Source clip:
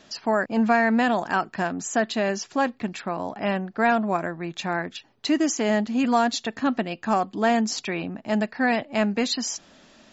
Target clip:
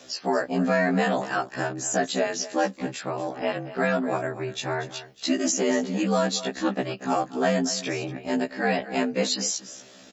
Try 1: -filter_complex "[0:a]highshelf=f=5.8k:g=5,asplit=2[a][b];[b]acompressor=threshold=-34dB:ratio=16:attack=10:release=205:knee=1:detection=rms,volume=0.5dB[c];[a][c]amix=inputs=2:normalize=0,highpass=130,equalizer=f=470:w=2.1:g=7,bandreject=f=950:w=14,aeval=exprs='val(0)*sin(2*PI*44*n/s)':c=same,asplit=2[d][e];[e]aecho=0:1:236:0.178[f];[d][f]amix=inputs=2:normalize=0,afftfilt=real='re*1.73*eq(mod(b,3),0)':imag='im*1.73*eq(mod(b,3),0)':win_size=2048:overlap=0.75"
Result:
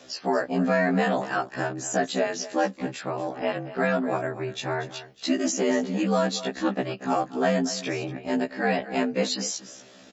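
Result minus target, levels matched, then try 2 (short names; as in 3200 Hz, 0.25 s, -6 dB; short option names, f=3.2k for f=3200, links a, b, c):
8000 Hz band -3.0 dB
-filter_complex "[0:a]highshelf=f=5.8k:g=12.5,asplit=2[a][b];[b]acompressor=threshold=-34dB:ratio=16:attack=10:release=205:knee=1:detection=rms,volume=0.5dB[c];[a][c]amix=inputs=2:normalize=0,highpass=130,equalizer=f=470:w=2.1:g=7,bandreject=f=950:w=14,aeval=exprs='val(0)*sin(2*PI*44*n/s)':c=same,asplit=2[d][e];[e]aecho=0:1:236:0.178[f];[d][f]amix=inputs=2:normalize=0,afftfilt=real='re*1.73*eq(mod(b,3),0)':imag='im*1.73*eq(mod(b,3),0)':win_size=2048:overlap=0.75"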